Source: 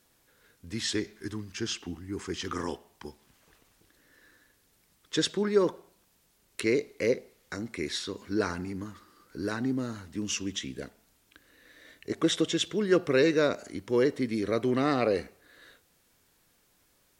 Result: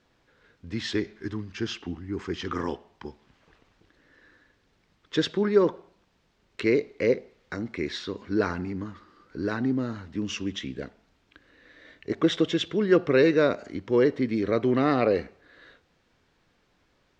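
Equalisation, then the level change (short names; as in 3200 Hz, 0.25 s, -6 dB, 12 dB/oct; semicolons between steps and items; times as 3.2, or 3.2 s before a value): air absorption 180 m; +4.0 dB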